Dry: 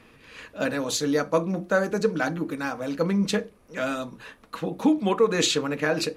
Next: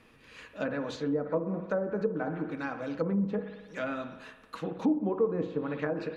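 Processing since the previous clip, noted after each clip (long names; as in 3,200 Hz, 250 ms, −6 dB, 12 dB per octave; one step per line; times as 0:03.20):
spring reverb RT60 1.2 s, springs 56 ms, chirp 70 ms, DRR 9 dB
treble cut that deepens with the level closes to 680 Hz, closed at −19 dBFS
level −6 dB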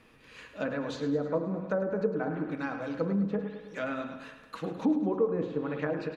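repeating echo 105 ms, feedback 54%, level −11 dB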